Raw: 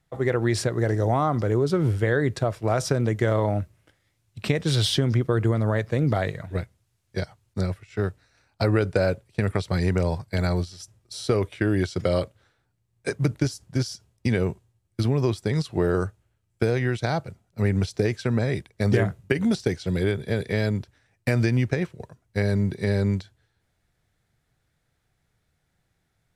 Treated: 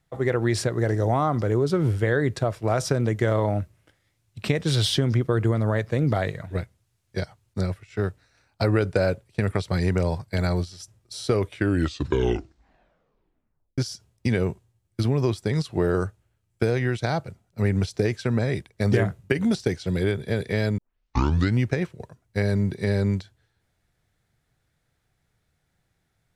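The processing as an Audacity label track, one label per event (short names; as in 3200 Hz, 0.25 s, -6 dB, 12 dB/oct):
11.570000	11.570000	tape stop 2.21 s
20.780000	20.780000	tape start 0.81 s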